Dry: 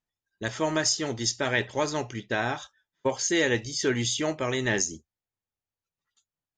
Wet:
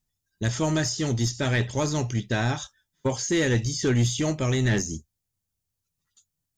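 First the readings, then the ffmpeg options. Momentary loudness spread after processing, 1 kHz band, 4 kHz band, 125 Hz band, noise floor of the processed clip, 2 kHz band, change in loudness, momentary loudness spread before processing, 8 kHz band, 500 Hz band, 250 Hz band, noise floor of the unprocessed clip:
8 LU, -1.5 dB, -1.5 dB, +11.5 dB, -83 dBFS, -2.0 dB, +2.0 dB, 8 LU, -1.5 dB, 0.0 dB, +4.5 dB, under -85 dBFS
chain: -filter_complex "[0:a]bass=f=250:g=14,treble=f=4000:g=12,acrossover=split=2600[s0][s1];[s1]acompressor=threshold=0.0355:ratio=4:attack=1:release=60[s2];[s0][s2]amix=inputs=2:normalize=0,asoftclip=type=tanh:threshold=0.178"

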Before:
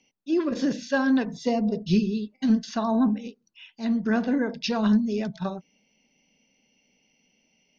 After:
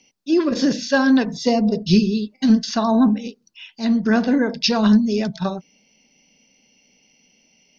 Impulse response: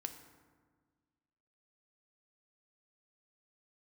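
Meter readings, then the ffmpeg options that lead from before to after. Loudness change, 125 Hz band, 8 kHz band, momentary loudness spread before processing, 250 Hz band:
+6.5 dB, +6.5 dB, no reading, 9 LU, +6.5 dB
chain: -af "equalizer=f=5000:t=o:w=0.75:g=7,volume=2.11"

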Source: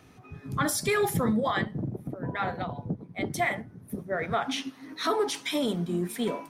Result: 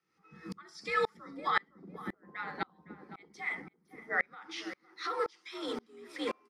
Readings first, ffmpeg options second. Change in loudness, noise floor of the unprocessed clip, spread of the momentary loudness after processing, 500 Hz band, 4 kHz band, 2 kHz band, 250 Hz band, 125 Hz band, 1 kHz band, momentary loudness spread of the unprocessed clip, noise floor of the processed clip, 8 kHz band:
-7.0 dB, -52 dBFS, 19 LU, -9.5 dB, -9.0 dB, -2.5 dB, -14.5 dB, -21.0 dB, -5.5 dB, 10 LU, -73 dBFS, -21.0 dB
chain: -filter_complex "[0:a]acrossover=split=6300[s0][s1];[s1]acompressor=threshold=0.002:ratio=4:attack=1:release=60[s2];[s0][s2]amix=inputs=2:normalize=0,afreqshift=60,alimiter=limit=0.0944:level=0:latency=1:release=470,aresample=32000,aresample=44100,equalizer=f=125:t=o:w=0.33:g=-11,equalizer=f=250:t=o:w=0.33:g=-11,equalizer=f=630:t=o:w=0.33:g=-11,equalizer=f=1250:t=o:w=0.33:g=9,equalizer=f=2000:t=o:w=0.33:g=9,equalizer=f=5000:t=o:w=0.33:g=11,equalizer=f=12500:t=o:w=0.33:g=-7,asplit=2[s3][s4];[s4]adelay=510,lowpass=f=1700:p=1,volume=0.211,asplit=2[s5][s6];[s6]adelay=510,lowpass=f=1700:p=1,volume=0.29,asplit=2[s7][s8];[s8]adelay=510,lowpass=f=1700:p=1,volume=0.29[s9];[s3][s5][s7][s9]amix=inputs=4:normalize=0,aeval=exprs='val(0)*pow(10,-33*if(lt(mod(-1.9*n/s,1),2*abs(-1.9)/1000),1-mod(-1.9*n/s,1)/(2*abs(-1.9)/1000),(mod(-1.9*n/s,1)-2*abs(-1.9)/1000)/(1-2*abs(-1.9)/1000))/20)':c=same,volume=1.26"

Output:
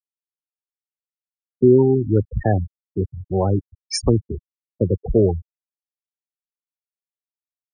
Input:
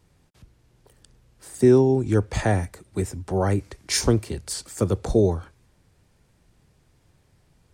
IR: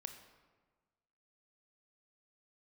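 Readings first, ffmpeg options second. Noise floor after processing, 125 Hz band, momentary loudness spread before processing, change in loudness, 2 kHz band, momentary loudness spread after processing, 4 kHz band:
under -85 dBFS, +3.0 dB, 13 LU, +3.0 dB, -6.5 dB, 13 LU, -1.5 dB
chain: -af "acontrast=29,afftfilt=real='re*gte(hypot(re,im),0.282)':imag='im*gte(hypot(re,im),0.282)':win_size=1024:overlap=0.75,volume=0.841"

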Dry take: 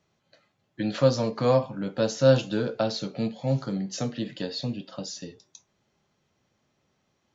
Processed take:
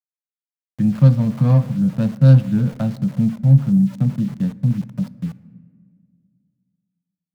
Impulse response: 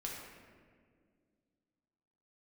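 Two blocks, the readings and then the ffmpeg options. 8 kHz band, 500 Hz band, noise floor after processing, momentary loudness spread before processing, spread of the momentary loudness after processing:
no reading, -7.0 dB, under -85 dBFS, 14 LU, 12 LU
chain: -filter_complex "[0:a]adynamicsmooth=sensitivity=2:basefreq=1000,lowshelf=f=260:t=q:w=3:g=13.5,aeval=exprs='val(0)*gte(abs(val(0)),0.02)':c=same,asplit=2[s0][s1];[1:a]atrim=start_sample=2205[s2];[s1][s2]afir=irnorm=-1:irlink=0,volume=0.188[s3];[s0][s3]amix=inputs=2:normalize=0,volume=0.708"

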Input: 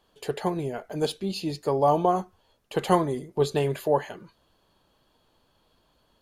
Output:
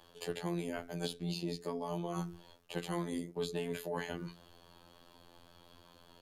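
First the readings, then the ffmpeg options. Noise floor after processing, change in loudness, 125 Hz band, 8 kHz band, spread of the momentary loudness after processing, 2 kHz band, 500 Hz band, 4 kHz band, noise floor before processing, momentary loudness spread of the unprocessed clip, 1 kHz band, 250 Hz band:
-62 dBFS, -13.0 dB, -10.0 dB, -7.0 dB, 7 LU, -6.5 dB, -14.0 dB, -7.0 dB, -68 dBFS, 10 LU, -18.0 dB, -9.0 dB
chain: -filter_complex "[0:a]areverse,acompressor=threshold=0.0178:ratio=4,areverse,bandreject=f=60:t=h:w=6,bandreject=f=120:t=h:w=6,bandreject=f=180:t=h:w=6,bandreject=f=240:t=h:w=6,bandreject=f=300:t=h:w=6,bandreject=f=360:t=h:w=6,bandreject=f=420:t=h:w=6,afftfilt=real='hypot(re,im)*cos(PI*b)':imag='0':win_size=2048:overlap=0.75,acrossover=split=350|1500[s0][s1][s2];[s0]acompressor=threshold=0.00501:ratio=4[s3];[s1]acompressor=threshold=0.00178:ratio=4[s4];[s2]acompressor=threshold=0.00251:ratio=4[s5];[s3][s4][s5]amix=inputs=3:normalize=0,volume=3.16"

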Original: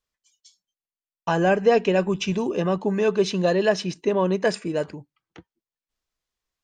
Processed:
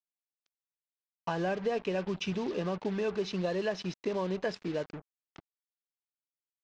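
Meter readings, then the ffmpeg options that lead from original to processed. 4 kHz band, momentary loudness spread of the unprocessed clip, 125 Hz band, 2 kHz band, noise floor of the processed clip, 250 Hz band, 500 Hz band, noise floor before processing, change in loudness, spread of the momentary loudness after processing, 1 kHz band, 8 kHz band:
-9.5 dB, 9 LU, -10.0 dB, -11.0 dB, under -85 dBFS, -10.0 dB, -11.5 dB, under -85 dBFS, -11.0 dB, 5 LU, -11.5 dB, -13.5 dB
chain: -af "acompressor=threshold=0.0631:ratio=3,acrusher=bits=5:mix=0:aa=0.5,lowpass=f=5600:w=0.5412,lowpass=f=5600:w=1.3066,volume=0.501"

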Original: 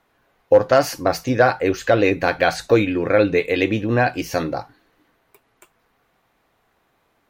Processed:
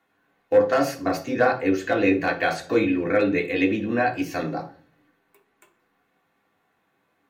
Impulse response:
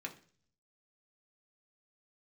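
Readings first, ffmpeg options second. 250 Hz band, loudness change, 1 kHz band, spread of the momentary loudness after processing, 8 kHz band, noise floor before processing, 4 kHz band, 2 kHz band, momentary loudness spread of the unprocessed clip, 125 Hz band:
-1.0 dB, -4.0 dB, -4.5 dB, 7 LU, -7.5 dB, -66 dBFS, -7.0 dB, -3.5 dB, 7 LU, -8.5 dB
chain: -filter_complex "[0:a]bandreject=f=2400:w=15,asoftclip=type=hard:threshold=0.531[s0];[1:a]atrim=start_sample=2205[s1];[s0][s1]afir=irnorm=-1:irlink=0,volume=0.75"

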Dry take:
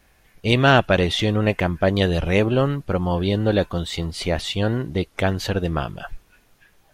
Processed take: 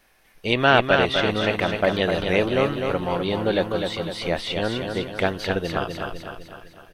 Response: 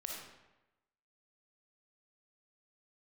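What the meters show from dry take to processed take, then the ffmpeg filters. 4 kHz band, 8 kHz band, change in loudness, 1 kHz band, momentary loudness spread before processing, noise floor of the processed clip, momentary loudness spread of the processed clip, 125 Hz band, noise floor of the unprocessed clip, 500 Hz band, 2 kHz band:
-0.5 dB, -5.5 dB, -1.5 dB, +0.5 dB, 10 LU, -57 dBFS, 12 LU, -8.0 dB, -58 dBFS, 0.0 dB, +1.0 dB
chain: -filter_complex "[0:a]equalizer=f=69:w=0.39:g=-12.5,bandreject=f=7000:w=8.3,asplit=2[s0][s1];[s1]aecho=0:1:253|506|759|1012|1265|1518|1771:0.531|0.276|0.144|0.0746|0.0388|0.0202|0.0105[s2];[s0][s2]amix=inputs=2:normalize=0,acrossover=split=4200[s3][s4];[s4]acompressor=threshold=0.00891:ratio=4:attack=1:release=60[s5];[s3][s5]amix=inputs=2:normalize=0"

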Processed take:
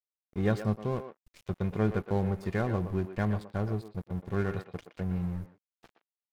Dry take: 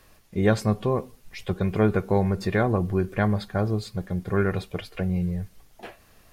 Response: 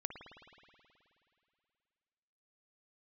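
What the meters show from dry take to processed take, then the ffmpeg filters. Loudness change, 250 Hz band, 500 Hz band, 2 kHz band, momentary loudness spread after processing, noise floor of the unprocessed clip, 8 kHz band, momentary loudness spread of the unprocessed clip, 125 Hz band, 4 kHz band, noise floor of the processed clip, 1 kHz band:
-6.5 dB, -6.5 dB, -8.0 dB, -8.5 dB, 11 LU, -57 dBFS, no reading, 16 LU, -6.0 dB, -12.0 dB, under -85 dBFS, -8.0 dB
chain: -filter_complex "[0:a]bass=f=250:g=4,treble=f=4000:g=-1,aeval=exprs='sgn(val(0))*max(abs(val(0))-0.0188,0)':c=same,asplit=2[s0][s1];[s1]adelay=120,highpass=300,lowpass=3400,asoftclip=type=hard:threshold=0.2,volume=0.355[s2];[s0][s2]amix=inputs=2:normalize=0,volume=0.398"

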